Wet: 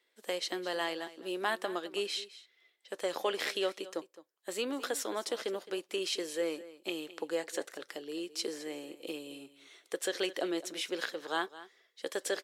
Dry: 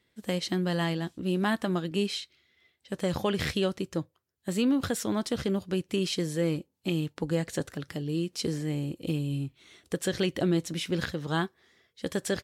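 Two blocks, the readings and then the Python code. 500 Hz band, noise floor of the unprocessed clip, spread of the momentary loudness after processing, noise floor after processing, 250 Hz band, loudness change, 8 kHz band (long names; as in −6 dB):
−3.5 dB, −75 dBFS, 10 LU, −74 dBFS, −12.5 dB, −6.0 dB, −2.0 dB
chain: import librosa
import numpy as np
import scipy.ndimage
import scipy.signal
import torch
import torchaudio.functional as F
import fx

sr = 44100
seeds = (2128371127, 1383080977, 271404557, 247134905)

p1 = scipy.signal.sosfilt(scipy.signal.butter(4, 380.0, 'highpass', fs=sr, output='sos'), x)
p2 = p1 + fx.echo_single(p1, sr, ms=214, db=-16.5, dry=0)
y = F.gain(torch.from_numpy(p2), -2.0).numpy()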